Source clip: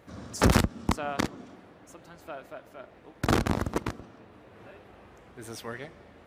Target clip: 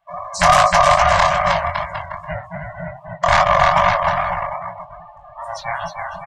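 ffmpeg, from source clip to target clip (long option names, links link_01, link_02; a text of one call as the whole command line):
ffmpeg -i in.wav -filter_complex "[0:a]afftfilt=real='real(if(between(b,1,1008),(2*floor((b-1)/48)+1)*48-b,b),0)':imag='imag(if(between(b,1,1008),(2*floor((b-1)/48)+1)*48-b,b),0)*if(between(b,1,1008),-1,1)':win_size=2048:overlap=0.75,asplit=2[link_01][link_02];[link_02]adelay=37,volume=-10dB[link_03];[link_01][link_03]amix=inputs=2:normalize=0,aeval=exprs='val(0)*sin(2*PI*240*n/s)':channel_layout=same,aecho=1:1:310|558|756.4|915.1|1042:0.631|0.398|0.251|0.158|0.1,afftfilt=real='re*(1-between(b*sr/4096,190,570))':imag='im*(1-between(b*sr/4096,190,570))':win_size=4096:overlap=0.75,highshelf=frequency=11000:gain=-7.5,acontrast=74,flanger=delay=17.5:depth=6.9:speed=2.5,afftdn=noise_reduction=27:noise_floor=-43,alimiter=level_in=14.5dB:limit=-1dB:release=50:level=0:latency=1,volume=-1dB" out.wav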